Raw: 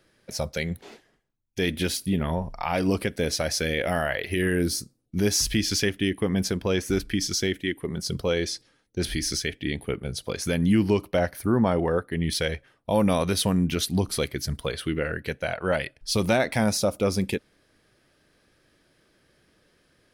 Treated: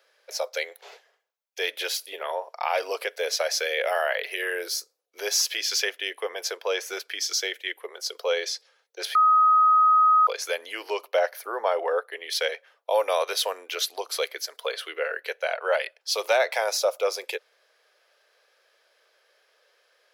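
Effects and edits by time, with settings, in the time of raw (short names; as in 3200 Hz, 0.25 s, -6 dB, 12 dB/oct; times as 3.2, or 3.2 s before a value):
9.15–10.27 bleep 1260 Hz -16.5 dBFS
whole clip: steep high-pass 460 Hz 48 dB/oct; bell 9100 Hz -12.5 dB 0.27 oct; notch 1900 Hz, Q 29; gain +2 dB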